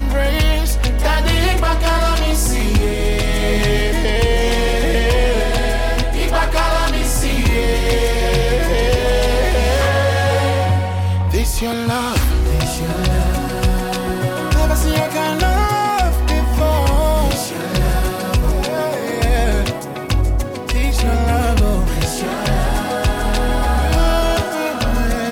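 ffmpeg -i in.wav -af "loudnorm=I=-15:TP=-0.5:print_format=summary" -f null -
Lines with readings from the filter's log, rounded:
Input Integrated:    -17.5 LUFS
Input True Peak:      -5.5 dBTP
Input LRA:             1.9 LU
Input Threshold:     -27.5 LUFS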